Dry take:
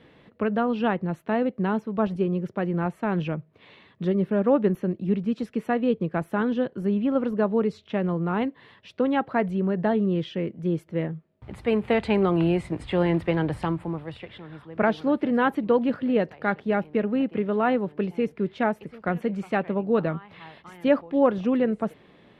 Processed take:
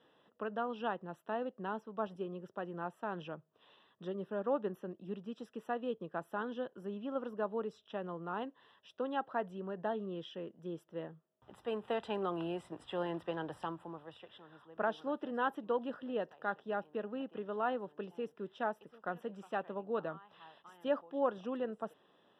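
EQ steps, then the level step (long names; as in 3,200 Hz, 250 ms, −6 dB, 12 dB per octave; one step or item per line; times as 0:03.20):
moving average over 20 samples
first difference
+11.0 dB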